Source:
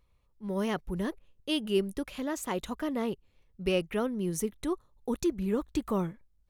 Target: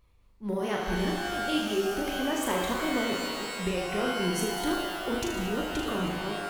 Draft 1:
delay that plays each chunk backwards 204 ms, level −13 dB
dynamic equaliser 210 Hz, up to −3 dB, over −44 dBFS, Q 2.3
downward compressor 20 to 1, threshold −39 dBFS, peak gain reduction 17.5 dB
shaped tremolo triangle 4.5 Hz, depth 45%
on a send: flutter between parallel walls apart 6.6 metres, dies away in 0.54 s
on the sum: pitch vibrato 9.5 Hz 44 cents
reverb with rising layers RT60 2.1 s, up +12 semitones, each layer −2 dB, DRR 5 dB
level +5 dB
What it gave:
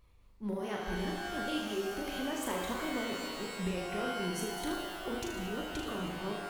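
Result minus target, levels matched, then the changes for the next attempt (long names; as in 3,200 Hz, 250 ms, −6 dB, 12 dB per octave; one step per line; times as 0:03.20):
downward compressor: peak gain reduction +7.5 dB
change: downward compressor 20 to 1, threshold −31 dBFS, peak gain reduction 10 dB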